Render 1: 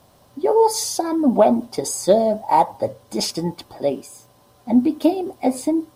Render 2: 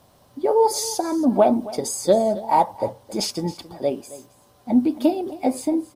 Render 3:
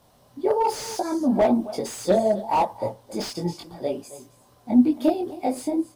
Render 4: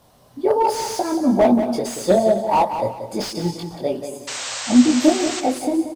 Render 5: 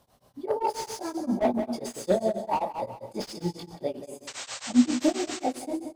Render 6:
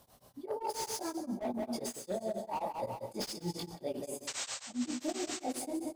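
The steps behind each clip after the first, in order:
single-tap delay 270 ms −17.5 dB; level −2 dB
multi-voice chorus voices 6, 0.92 Hz, delay 21 ms, depth 4.6 ms; slew-rate limiting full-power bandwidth 110 Hz; level +1 dB
sound drawn into the spectrogram noise, 0:04.27–0:05.41, 480–8,500 Hz −33 dBFS; repeating echo 182 ms, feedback 29%, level −9 dB; level +4 dB
on a send at −13.5 dB: convolution reverb RT60 0.40 s, pre-delay 3 ms; on the sum: tremolo along a rectified sine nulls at 7.5 Hz; level −7 dB
high-shelf EQ 6,900 Hz +8 dB; reversed playback; downward compressor 6 to 1, threshold −34 dBFS, peak gain reduction 19 dB; reversed playback

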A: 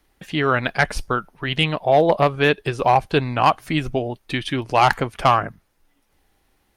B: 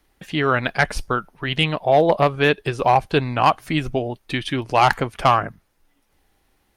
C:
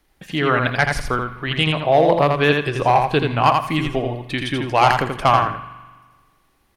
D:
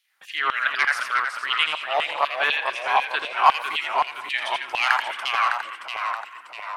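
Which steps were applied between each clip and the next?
no processing that can be heard
on a send: repeating echo 83 ms, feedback 22%, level −4.5 dB; on the sum: spring reverb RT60 1.5 s, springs 41 ms, chirp 35 ms, DRR 13 dB
auto-filter high-pass saw down 4 Hz 900–3,100 Hz; delay with pitch and tempo change per echo 316 ms, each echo −1 semitone, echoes 3, each echo −6 dB; level −5 dB

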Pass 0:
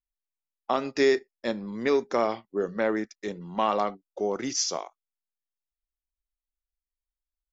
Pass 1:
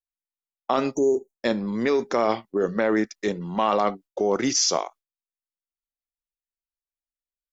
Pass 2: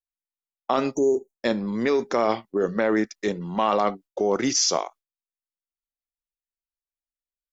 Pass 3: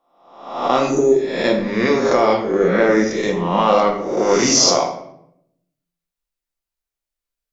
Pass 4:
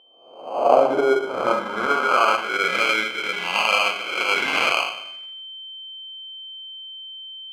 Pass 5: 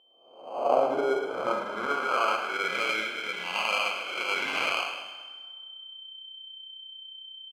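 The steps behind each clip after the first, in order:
noise gate with hold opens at −45 dBFS; time-frequency box erased 0:00.95–0:01.40, 980–5,700 Hz; in parallel at 0 dB: compressor whose output falls as the input rises −28 dBFS, ratio −0.5
no processing that can be heard
peak hold with a rise ahead of every peak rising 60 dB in 0.75 s; rectangular room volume 170 cubic metres, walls mixed, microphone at 0.8 metres; level +3.5 dB
decimation without filtering 24×; steady tone 3,100 Hz −35 dBFS; band-pass filter sweep 440 Hz → 2,200 Hz, 0:00.14–0:02.89; level +6.5 dB
on a send: echo with shifted repeats 107 ms, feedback 52%, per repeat +31 Hz, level −10 dB; on the sum: dense smooth reverb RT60 2 s, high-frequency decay 0.65×, DRR 14.5 dB; level −8.5 dB

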